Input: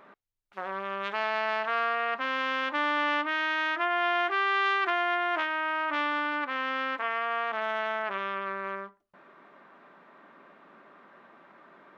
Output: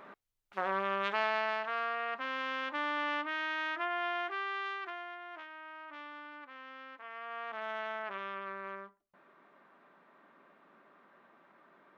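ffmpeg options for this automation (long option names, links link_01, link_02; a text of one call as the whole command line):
ffmpeg -i in.wav -af "volume=12.5dB,afade=type=out:start_time=0.72:duration=0.95:silence=0.354813,afade=type=out:start_time=3.84:duration=1.32:silence=0.266073,afade=type=in:start_time=7:duration=0.72:silence=0.298538" out.wav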